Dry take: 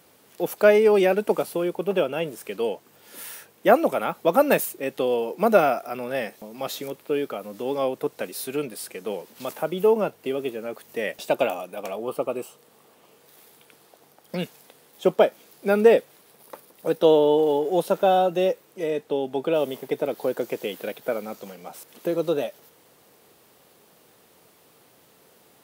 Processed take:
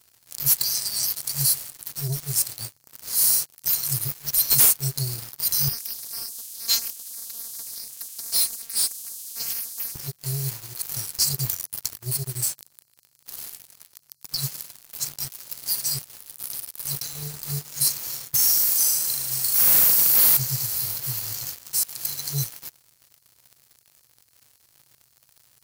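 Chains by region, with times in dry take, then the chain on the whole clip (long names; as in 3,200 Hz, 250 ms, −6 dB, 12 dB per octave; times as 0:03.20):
0:05.68–0:09.96: phases set to zero 230 Hz + high-pass filter 98 Hz
0:18.34–0:20.37: spectral tilt +5 dB per octave + downward compressor 1.5 to 1, threshold −40 dBFS + flutter between parallel walls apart 6.6 metres, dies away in 0.74 s
whole clip: mains-hum notches 50/100 Hz; brick-wall band-stop 150–4,000 Hz; leveller curve on the samples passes 5; level +4 dB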